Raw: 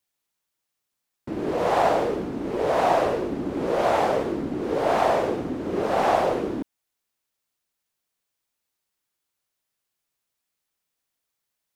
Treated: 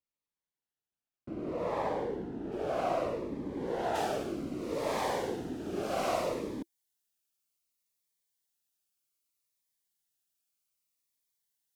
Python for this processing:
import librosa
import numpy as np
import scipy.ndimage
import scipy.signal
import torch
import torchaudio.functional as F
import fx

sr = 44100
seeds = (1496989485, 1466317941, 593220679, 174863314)

y = fx.high_shelf(x, sr, hz=3400.0, db=fx.steps((0.0, -11.5), (2.51, -4.5), (3.94, 9.0)))
y = fx.notch_cascade(y, sr, direction='falling', hz=0.64)
y = y * librosa.db_to_amplitude(-8.5)